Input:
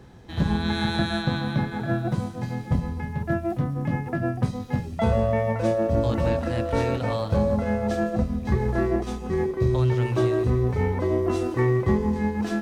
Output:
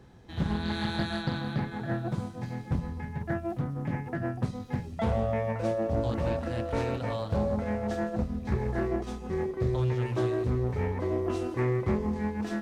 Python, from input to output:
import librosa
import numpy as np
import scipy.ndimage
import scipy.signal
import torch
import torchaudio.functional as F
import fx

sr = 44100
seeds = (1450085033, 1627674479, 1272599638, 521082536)

y = fx.doppler_dist(x, sr, depth_ms=0.29)
y = F.gain(torch.from_numpy(y), -6.0).numpy()